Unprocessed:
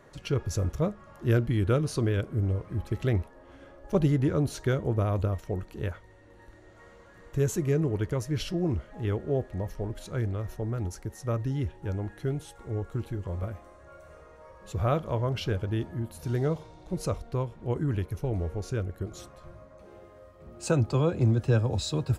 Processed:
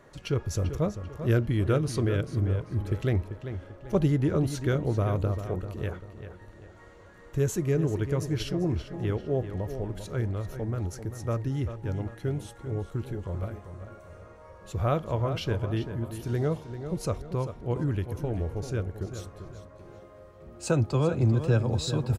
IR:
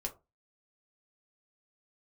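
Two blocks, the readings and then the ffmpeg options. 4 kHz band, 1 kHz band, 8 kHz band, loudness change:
0.0 dB, +0.5 dB, 0.0 dB, +0.5 dB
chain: -filter_complex "[0:a]asplit=2[link_01][link_02];[link_02]adelay=392,lowpass=frequency=4800:poles=1,volume=-10dB,asplit=2[link_03][link_04];[link_04]adelay=392,lowpass=frequency=4800:poles=1,volume=0.39,asplit=2[link_05][link_06];[link_06]adelay=392,lowpass=frequency=4800:poles=1,volume=0.39,asplit=2[link_07][link_08];[link_08]adelay=392,lowpass=frequency=4800:poles=1,volume=0.39[link_09];[link_01][link_03][link_05][link_07][link_09]amix=inputs=5:normalize=0"

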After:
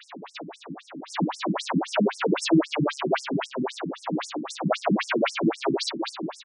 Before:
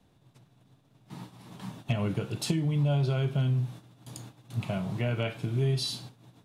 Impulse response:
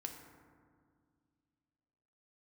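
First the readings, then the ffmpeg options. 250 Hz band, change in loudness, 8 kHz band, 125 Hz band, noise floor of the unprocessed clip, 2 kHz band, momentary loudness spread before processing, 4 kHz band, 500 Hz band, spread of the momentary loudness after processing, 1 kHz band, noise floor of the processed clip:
+8.5 dB, +3.5 dB, +5.0 dB, −6.5 dB, −64 dBFS, +11.0 dB, 20 LU, +6.0 dB, +9.0 dB, 18 LU, +14.5 dB, −50 dBFS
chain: -filter_complex "[0:a]asplit=2[link_01][link_02];[link_02]acompressor=threshold=-42dB:ratio=6,volume=1.5dB[link_03];[link_01][link_03]amix=inputs=2:normalize=0,highpass=66,asplit=2[link_04][link_05];[link_05]highpass=frequency=720:poles=1,volume=36dB,asoftclip=type=tanh:threshold=-12.5dB[link_06];[link_04][link_06]amix=inputs=2:normalize=0,lowpass=frequency=1200:poles=1,volume=-6dB,asplit=2[link_07][link_08];[link_08]equalizer=frequency=110:width=0.84:gain=-7[link_09];[1:a]atrim=start_sample=2205,asetrate=48510,aresample=44100[link_10];[link_09][link_10]afir=irnorm=-1:irlink=0,volume=3.5dB[link_11];[link_07][link_11]amix=inputs=2:normalize=0,aeval=exprs='0.473*(cos(1*acos(clip(val(0)/0.473,-1,1)))-cos(1*PI/2))+0.237*(cos(2*acos(clip(val(0)/0.473,-1,1)))-cos(2*PI/2))':channel_layout=same,aecho=1:1:90|180|270|360|450:0.237|0.123|0.0641|0.0333|0.0173,adynamicequalizer=threshold=0.02:dfrequency=160:dqfactor=5.3:tfrequency=160:tqfactor=5.3:attack=5:release=100:ratio=0.375:range=3:mode=boostabove:tftype=bell,afftfilt=real='re*between(b*sr/1024,220*pow(7400/220,0.5+0.5*sin(2*PI*3.8*pts/sr))/1.41,220*pow(7400/220,0.5+0.5*sin(2*PI*3.8*pts/sr))*1.41)':imag='im*between(b*sr/1024,220*pow(7400/220,0.5+0.5*sin(2*PI*3.8*pts/sr))/1.41,220*pow(7400/220,0.5+0.5*sin(2*PI*3.8*pts/sr))*1.41)':win_size=1024:overlap=0.75"

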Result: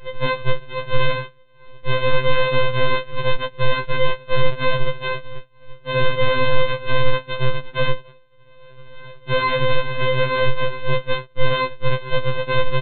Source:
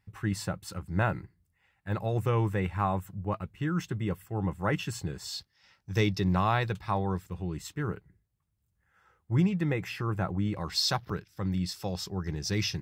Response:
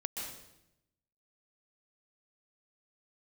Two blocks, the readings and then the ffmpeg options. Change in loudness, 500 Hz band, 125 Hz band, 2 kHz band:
+8.5 dB, +14.0 dB, +4.0 dB, +14.5 dB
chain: -af "acompressor=mode=upward:threshold=-42dB:ratio=2.5,aresample=8000,acrusher=samples=25:mix=1:aa=0.000001:lfo=1:lforange=25:lforate=2.3,aresample=44100,afftfilt=real='hypot(re,im)*cos(PI*b)':imag='0':win_size=1024:overlap=0.75,alimiter=level_in=23.5dB:limit=-1dB:release=50:level=0:latency=1,afftfilt=real='re*2.45*eq(mod(b,6),0)':imag='im*2.45*eq(mod(b,6),0)':win_size=2048:overlap=0.75"

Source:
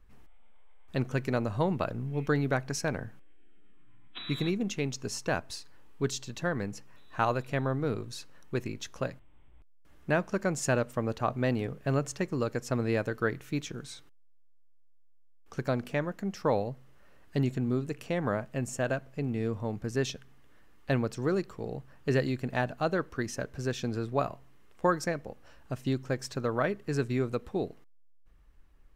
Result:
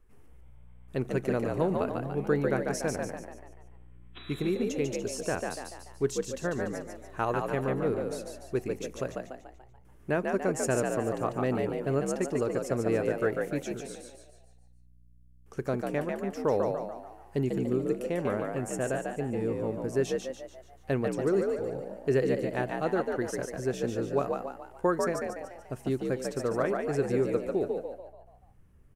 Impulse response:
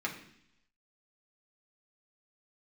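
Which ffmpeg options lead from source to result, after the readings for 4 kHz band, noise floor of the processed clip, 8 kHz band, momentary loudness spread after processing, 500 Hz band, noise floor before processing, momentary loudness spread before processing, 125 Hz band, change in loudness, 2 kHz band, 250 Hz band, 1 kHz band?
−4.5 dB, −56 dBFS, +0.5 dB, 12 LU, +4.0 dB, −54 dBFS, 11 LU, −3.0 dB, +1.0 dB, −2.0 dB, +1.0 dB, 0.0 dB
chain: -filter_complex "[0:a]equalizer=frequency=400:width_type=o:width=0.67:gain=8,equalizer=frequency=4000:width_type=o:width=0.67:gain=-6,equalizer=frequency=10000:width_type=o:width=0.67:gain=8,asplit=7[link_01][link_02][link_03][link_04][link_05][link_06][link_07];[link_02]adelay=145,afreqshift=61,volume=-4dB[link_08];[link_03]adelay=290,afreqshift=122,volume=-10.7dB[link_09];[link_04]adelay=435,afreqshift=183,volume=-17.5dB[link_10];[link_05]adelay=580,afreqshift=244,volume=-24.2dB[link_11];[link_06]adelay=725,afreqshift=305,volume=-31dB[link_12];[link_07]adelay=870,afreqshift=366,volume=-37.7dB[link_13];[link_01][link_08][link_09][link_10][link_11][link_12][link_13]amix=inputs=7:normalize=0,volume=-3.5dB"

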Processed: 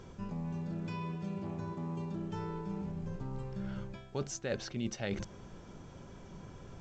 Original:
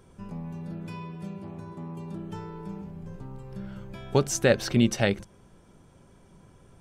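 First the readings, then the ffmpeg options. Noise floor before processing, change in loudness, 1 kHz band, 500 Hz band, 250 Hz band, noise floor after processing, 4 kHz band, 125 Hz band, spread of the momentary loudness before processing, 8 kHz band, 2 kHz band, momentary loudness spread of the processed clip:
−57 dBFS, −10.0 dB, −7.0 dB, −12.5 dB, −8.5 dB, −52 dBFS, −12.0 dB, −6.5 dB, 18 LU, −11.5 dB, −13.0 dB, 14 LU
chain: -af "areverse,acompressor=threshold=-41dB:ratio=5,areverse,volume=5dB" -ar 16000 -c:a pcm_alaw

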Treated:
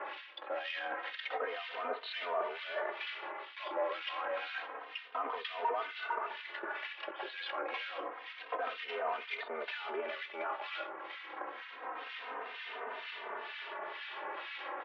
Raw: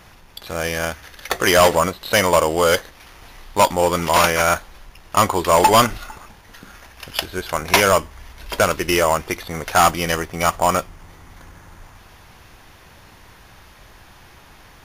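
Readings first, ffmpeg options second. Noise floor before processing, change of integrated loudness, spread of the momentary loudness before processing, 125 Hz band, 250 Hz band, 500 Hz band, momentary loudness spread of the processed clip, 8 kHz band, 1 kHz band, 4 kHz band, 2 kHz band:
−47 dBFS, −21.5 dB, 13 LU, below −40 dB, −27.5 dB, −20.0 dB, 7 LU, below −40 dB, −19.0 dB, −18.0 dB, −16.0 dB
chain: -filter_complex "[0:a]asplit=2[link_01][link_02];[link_02]aeval=exprs='0.501*sin(PI/2*6.31*val(0)/0.501)':channel_layout=same,volume=-9dB[link_03];[link_01][link_03]amix=inputs=2:normalize=0,aecho=1:1:92:0.0891,alimiter=limit=-14dB:level=0:latency=1:release=15,areverse,acompressor=threshold=-30dB:ratio=10,areverse,aeval=exprs='sgn(val(0))*max(abs(val(0))-0.00422,0)':channel_layout=same,highpass=frequency=330:width_type=q:width=0.5412,highpass=frequency=330:width_type=q:width=1.307,lowpass=frequency=3300:width_type=q:width=0.5176,lowpass=frequency=3300:width_type=q:width=0.7071,lowpass=frequency=3300:width_type=q:width=1.932,afreqshift=69,acrossover=split=1700[link_04][link_05];[link_04]aeval=exprs='val(0)*(1-1/2+1/2*cos(2*PI*2.1*n/s))':channel_layout=same[link_06];[link_05]aeval=exprs='val(0)*(1-1/2-1/2*cos(2*PI*2.1*n/s))':channel_layout=same[link_07];[link_06][link_07]amix=inputs=2:normalize=0,asplit=2[link_08][link_09];[link_09]adelay=3.1,afreqshift=-0.28[link_10];[link_08][link_10]amix=inputs=2:normalize=1,volume=5dB"

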